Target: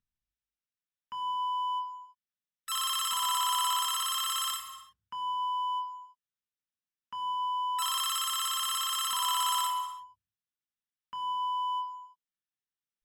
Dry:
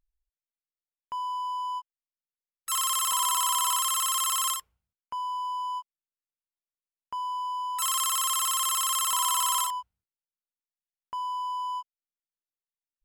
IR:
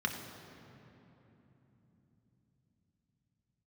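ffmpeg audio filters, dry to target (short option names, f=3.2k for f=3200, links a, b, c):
-filter_complex "[0:a]equalizer=f=590:t=o:w=1.3:g=-11[a];[1:a]atrim=start_sample=2205,afade=t=out:st=0.38:d=0.01,atrim=end_sample=17199[b];[a][b]afir=irnorm=-1:irlink=0,volume=-5dB"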